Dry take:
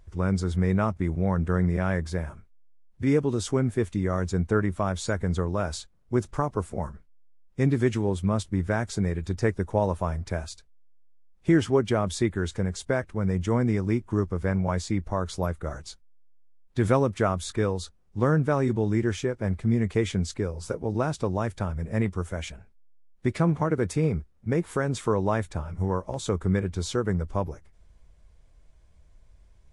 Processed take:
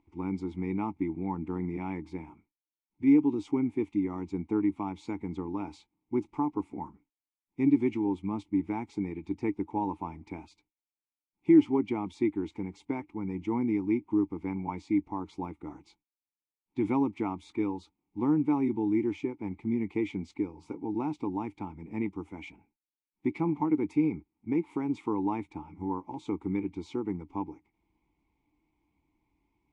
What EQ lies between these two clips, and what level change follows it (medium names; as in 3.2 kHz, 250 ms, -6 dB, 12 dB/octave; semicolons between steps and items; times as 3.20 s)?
vowel filter u; +7.5 dB